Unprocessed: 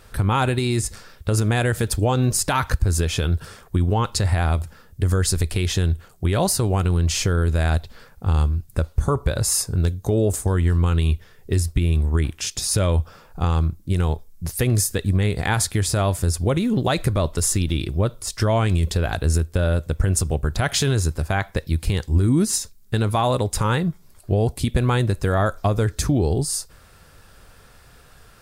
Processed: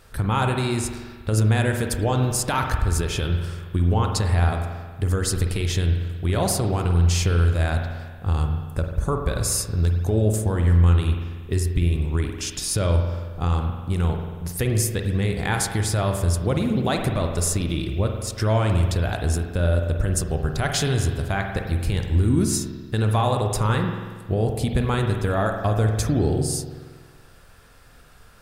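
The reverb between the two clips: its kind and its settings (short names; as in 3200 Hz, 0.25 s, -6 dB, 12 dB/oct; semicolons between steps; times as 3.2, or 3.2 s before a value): spring tank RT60 1.5 s, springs 46 ms, chirp 65 ms, DRR 3.5 dB; gain -3 dB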